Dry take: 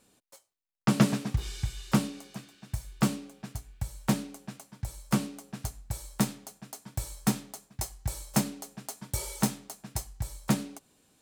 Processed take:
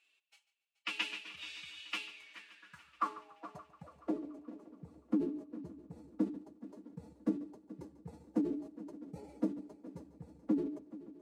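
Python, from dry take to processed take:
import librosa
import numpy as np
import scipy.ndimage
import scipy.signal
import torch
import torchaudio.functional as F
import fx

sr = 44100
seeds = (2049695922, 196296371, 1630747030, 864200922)

y = fx.filter_sweep_bandpass(x, sr, from_hz=2700.0, to_hz=300.0, start_s=2.09, end_s=4.44, q=6.0)
y = fx.pitch_keep_formants(y, sr, semitones=7.0)
y = fx.echo_heads(y, sr, ms=143, heads='first and third', feedback_pct=57, wet_db=-17.5)
y = y * 10.0 ** (7.5 / 20.0)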